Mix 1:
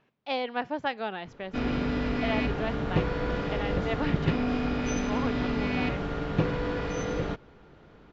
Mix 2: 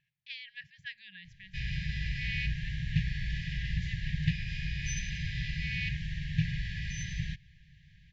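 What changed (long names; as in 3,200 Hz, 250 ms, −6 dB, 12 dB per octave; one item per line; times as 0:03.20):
speech −6.5 dB
master: add linear-phase brick-wall band-stop 180–1,600 Hz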